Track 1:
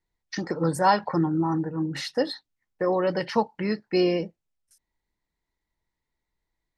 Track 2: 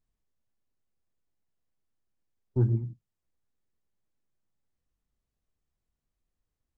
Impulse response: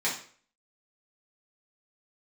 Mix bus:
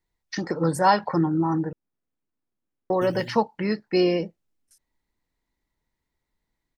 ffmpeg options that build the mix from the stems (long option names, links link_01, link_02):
-filter_complex "[0:a]volume=1.5dB,asplit=3[link_01][link_02][link_03];[link_01]atrim=end=1.73,asetpts=PTS-STARTPTS,afade=type=out:start_time=1.726:duration=0.004:curve=hsin[link_04];[link_02]atrim=start=1.73:end=2.9,asetpts=PTS-STARTPTS,volume=0[link_05];[link_03]atrim=start=2.9,asetpts=PTS-STARTPTS,afade=type=in:duration=0.004:curve=hsin[link_06];[link_04][link_05][link_06]concat=n=3:v=0:a=1,asplit=2[link_07][link_08];[1:a]equalizer=frequency=280:width=0.99:gain=11.5,acompressor=threshold=-19dB:ratio=6,acrusher=samples=12:mix=1:aa=0.000001:lfo=1:lforange=7.2:lforate=1.6,adelay=450,volume=-4.5dB[link_09];[link_08]apad=whole_len=318476[link_10];[link_09][link_10]sidechaincompress=threshold=-29dB:ratio=4:attack=16:release=390[link_11];[link_07][link_11]amix=inputs=2:normalize=0"